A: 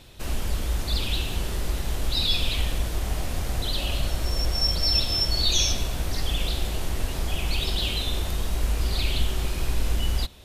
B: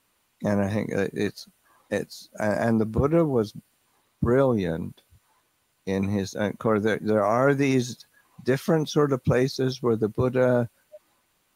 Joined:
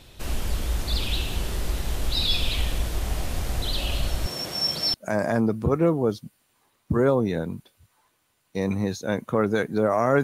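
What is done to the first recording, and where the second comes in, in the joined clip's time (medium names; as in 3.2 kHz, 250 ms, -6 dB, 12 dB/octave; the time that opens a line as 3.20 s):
A
4.26–4.94 s: high-pass 130 Hz 24 dB/octave
4.94 s: go over to B from 2.26 s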